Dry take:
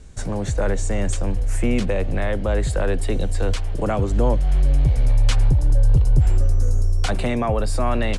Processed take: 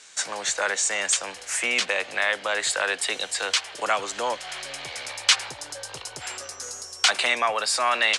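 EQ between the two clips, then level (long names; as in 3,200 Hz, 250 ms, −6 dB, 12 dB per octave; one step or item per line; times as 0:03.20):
high-pass filter 1,200 Hz 12 dB per octave
high-frequency loss of the air 79 metres
high-shelf EQ 3,400 Hz +11.5 dB
+8.0 dB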